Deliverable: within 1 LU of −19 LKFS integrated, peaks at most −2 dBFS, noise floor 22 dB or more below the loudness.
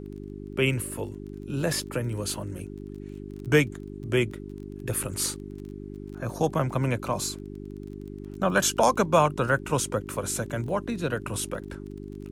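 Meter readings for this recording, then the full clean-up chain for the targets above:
crackle rate 23 per second; mains hum 50 Hz; hum harmonics up to 400 Hz; level of the hum −36 dBFS; integrated loudness −27.5 LKFS; sample peak −8.0 dBFS; target loudness −19.0 LKFS
→ click removal
hum removal 50 Hz, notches 8
level +8.5 dB
brickwall limiter −2 dBFS

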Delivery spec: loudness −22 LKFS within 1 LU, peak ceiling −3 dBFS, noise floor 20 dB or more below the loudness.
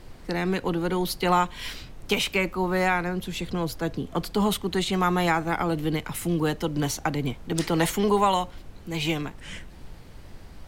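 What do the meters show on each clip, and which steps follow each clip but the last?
background noise floor −45 dBFS; target noise floor −46 dBFS; integrated loudness −26.0 LKFS; sample peak −8.5 dBFS; target loudness −22.0 LKFS
→ noise reduction from a noise print 6 dB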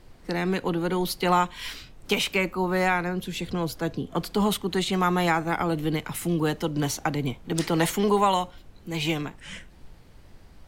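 background noise floor −51 dBFS; integrated loudness −26.0 LKFS; sample peak −8.5 dBFS; target loudness −22.0 LKFS
→ level +4 dB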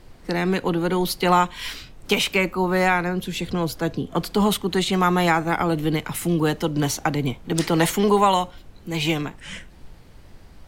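integrated loudness −22.0 LKFS; sample peak −4.5 dBFS; background noise floor −47 dBFS

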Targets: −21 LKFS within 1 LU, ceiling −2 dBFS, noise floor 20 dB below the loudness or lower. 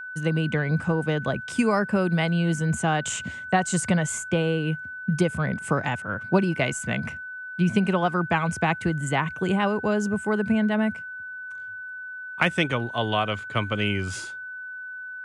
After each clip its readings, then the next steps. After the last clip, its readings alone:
interfering tone 1,500 Hz; level of the tone −34 dBFS; integrated loudness −25.0 LKFS; sample peak −7.5 dBFS; target loudness −21.0 LKFS
→ notch filter 1,500 Hz, Q 30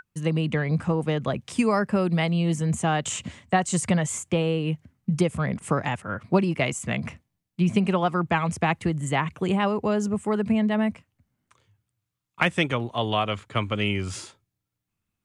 interfering tone none found; integrated loudness −25.5 LKFS; sample peak −7.5 dBFS; target loudness −21.0 LKFS
→ level +4.5 dB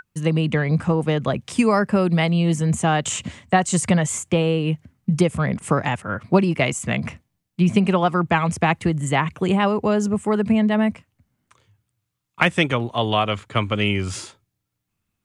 integrated loudness −21.0 LKFS; sample peak −3.0 dBFS; background noise floor −78 dBFS

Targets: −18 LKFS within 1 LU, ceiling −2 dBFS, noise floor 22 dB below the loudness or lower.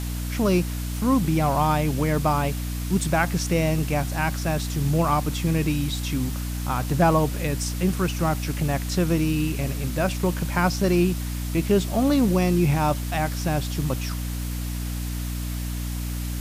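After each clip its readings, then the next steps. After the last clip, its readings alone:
mains hum 60 Hz; hum harmonics up to 300 Hz; level of the hum −26 dBFS; background noise floor −29 dBFS; target noise floor −46 dBFS; integrated loudness −24.0 LKFS; sample peak −7.0 dBFS; target loudness −18.0 LKFS
→ mains-hum notches 60/120/180/240/300 Hz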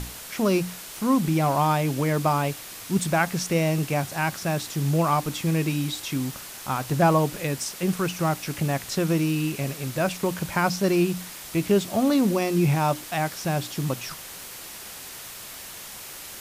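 mains hum none found; background noise floor −40 dBFS; target noise floor −47 dBFS
→ broadband denoise 7 dB, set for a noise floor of −40 dBFS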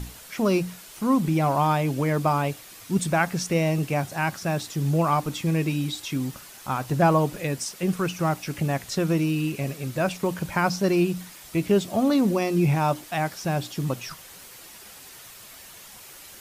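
background noise floor −45 dBFS; target noise floor −47 dBFS
→ broadband denoise 6 dB, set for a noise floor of −45 dBFS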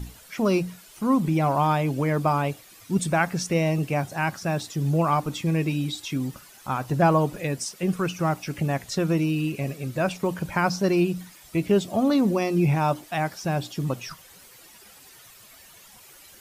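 background noise floor −50 dBFS; integrated loudness −25.0 LKFS; sample peak −8.0 dBFS; target loudness −18.0 LKFS
→ level +7 dB
brickwall limiter −2 dBFS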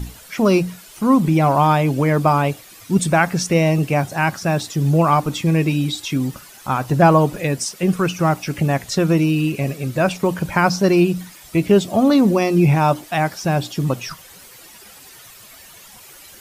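integrated loudness −18.0 LKFS; sample peak −2.0 dBFS; background noise floor −43 dBFS

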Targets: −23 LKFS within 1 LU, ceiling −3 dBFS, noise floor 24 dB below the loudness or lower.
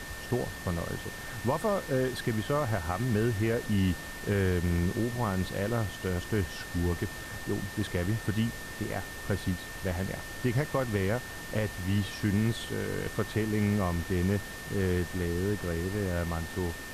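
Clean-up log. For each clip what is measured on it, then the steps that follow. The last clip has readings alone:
interfering tone 1,800 Hz; level of the tone −43 dBFS; background noise floor −41 dBFS; target noise floor −56 dBFS; integrated loudness −31.5 LKFS; sample peak −15.0 dBFS; target loudness −23.0 LKFS
→ notch filter 1,800 Hz, Q 30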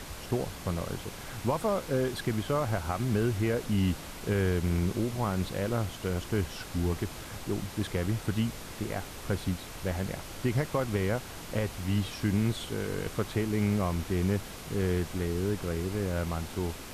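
interfering tone none found; background noise floor −43 dBFS; target noise floor −56 dBFS
→ noise reduction from a noise print 13 dB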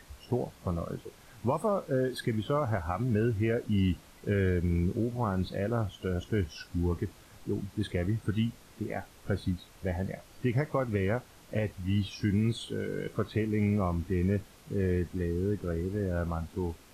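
background noise floor −56 dBFS; integrated loudness −32.0 LKFS; sample peak −16.0 dBFS; target loudness −23.0 LKFS
→ level +9 dB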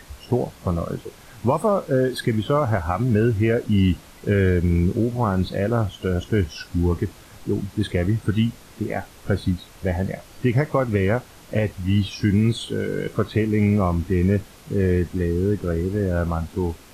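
integrated loudness −23.0 LKFS; sample peak −7.0 dBFS; background noise floor −47 dBFS

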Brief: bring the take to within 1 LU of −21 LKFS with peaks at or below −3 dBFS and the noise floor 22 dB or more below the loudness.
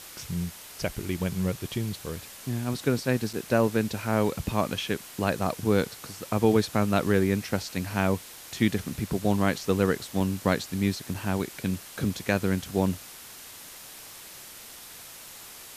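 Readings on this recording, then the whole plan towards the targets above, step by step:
number of dropouts 3; longest dropout 4.7 ms; background noise floor −45 dBFS; target noise floor −50 dBFS; integrated loudness −28.0 LKFS; sample peak −9.0 dBFS; target loudness −21.0 LKFS
→ repair the gap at 0:03.33/0:10.20/0:11.14, 4.7 ms
broadband denoise 6 dB, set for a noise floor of −45 dBFS
level +7 dB
brickwall limiter −3 dBFS

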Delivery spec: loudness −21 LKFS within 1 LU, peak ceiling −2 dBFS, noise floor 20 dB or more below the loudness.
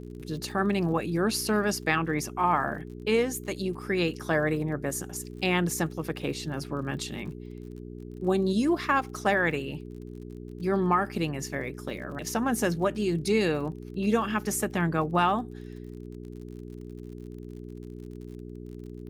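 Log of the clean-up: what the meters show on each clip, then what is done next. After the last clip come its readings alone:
crackle rate 47 per second; mains hum 60 Hz; hum harmonics up to 420 Hz; level of the hum −38 dBFS; integrated loudness −28.0 LKFS; sample peak −10.5 dBFS; target loudness −21.0 LKFS
→ click removal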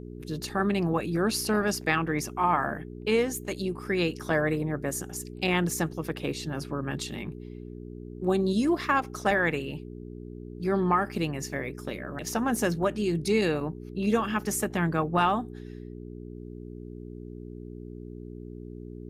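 crackle rate 0.21 per second; mains hum 60 Hz; hum harmonics up to 420 Hz; level of the hum −39 dBFS
→ hum removal 60 Hz, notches 7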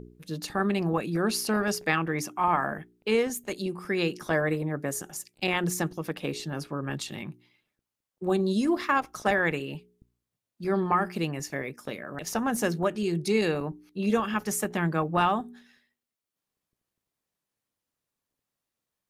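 mains hum none found; integrated loudness −28.5 LKFS; sample peak −10.0 dBFS; target loudness −21.0 LKFS
→ level +7.5 dB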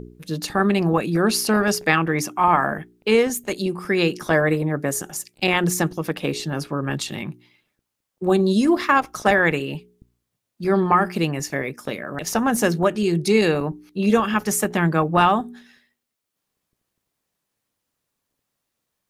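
integrated loudness −21.0 LKFS; sample peak −2.5 dBFS; background noise floor −80 dBFS

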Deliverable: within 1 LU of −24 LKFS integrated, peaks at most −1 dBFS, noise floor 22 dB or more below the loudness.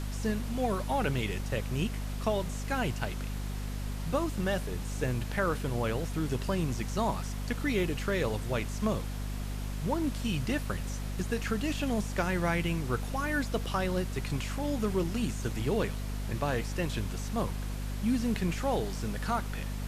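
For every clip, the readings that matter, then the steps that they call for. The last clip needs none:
mains hum 50 Hz; hum harmonics up to 250 Hz; level of the hum −33 dBFS; background noise floor −36 dBFS; target noise floor −55 dBFS; integrated loudness −32.5 LKFS; sample peak −16.0 dBFS; target loudness −24.0 LKFS
→ mains-hum notches 50/100/150/200/250 Hz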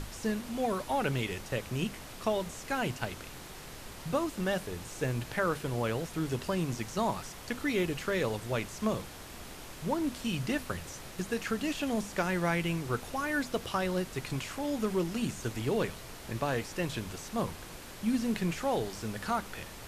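mains hum none found; background noise floor −46 dBFS; target noise floor −56 dBFS
→ noise reduction from a noise print 10 dB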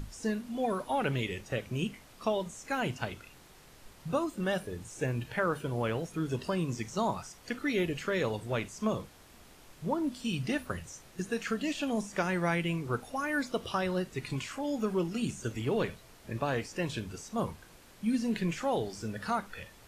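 background noise floor −56 dBFS; integrated loudness −33.5 LKFS; sample peak −17.5 dBFS; target loudness −24.0 LKFS
→ level +9.5 dB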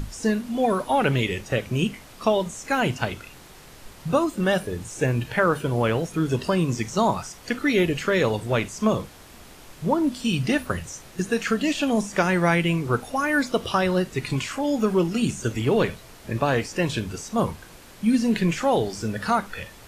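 integrated loudness −24.0 LKFS; sample peak −8.0 dBFS; background noise floor −46 dBFS

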